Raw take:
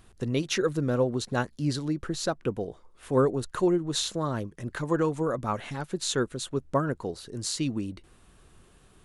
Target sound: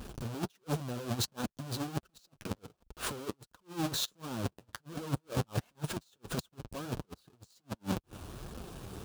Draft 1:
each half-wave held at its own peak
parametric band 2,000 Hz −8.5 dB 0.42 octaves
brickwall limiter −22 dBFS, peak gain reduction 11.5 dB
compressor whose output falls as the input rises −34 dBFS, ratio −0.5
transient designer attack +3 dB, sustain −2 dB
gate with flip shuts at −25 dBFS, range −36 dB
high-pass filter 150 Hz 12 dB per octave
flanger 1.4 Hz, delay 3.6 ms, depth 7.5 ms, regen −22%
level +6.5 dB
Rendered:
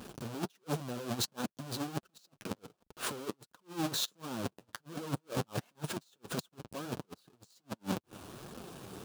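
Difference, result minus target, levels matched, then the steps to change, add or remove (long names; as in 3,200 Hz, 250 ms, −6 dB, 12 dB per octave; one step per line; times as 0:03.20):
125 Hz band −3.0 dB
change: high-pass filter 50 Hz 12 dB per octave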